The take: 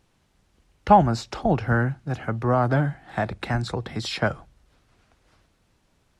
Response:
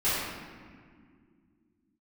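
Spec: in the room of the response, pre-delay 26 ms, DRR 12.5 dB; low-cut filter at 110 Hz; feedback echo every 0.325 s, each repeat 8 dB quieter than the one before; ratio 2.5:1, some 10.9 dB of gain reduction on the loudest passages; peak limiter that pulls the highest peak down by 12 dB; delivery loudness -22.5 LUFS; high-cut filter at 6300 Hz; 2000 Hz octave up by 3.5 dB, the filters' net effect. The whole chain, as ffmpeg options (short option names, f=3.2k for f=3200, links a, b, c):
-filter_complex "[0:a]highpass=110,lowpass=6.3k,equalizer=f=2k:t=o:g=5,acompressor=threshold=-25dB:ratio=2.5,alimiter=limit=-23dB:level=0:latency=1,aecho=1:1:325|650|975|1300|1625:0.398|0.159|0.0637|0.0255|0.0102,asplit=2[a][b];[1:a]atrim=start_sample=2205,adelay=26[c];[b][c]afir=irnorm=-1:irlink=0,volume=-25dB[d];[a][d]amix=inputs=2:normalize=0,volume=10.5dB"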